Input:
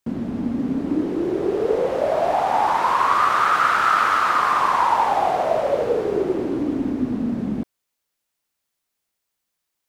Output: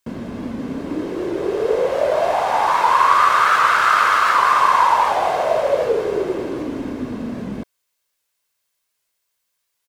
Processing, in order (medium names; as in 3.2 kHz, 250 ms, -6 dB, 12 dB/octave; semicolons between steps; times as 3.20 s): tilt shelf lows -3.5 dB, about 650 Hz; comb 1.9 ms, depth 32%; warped record 78 rpm, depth 100 cents; trim +1.5 dB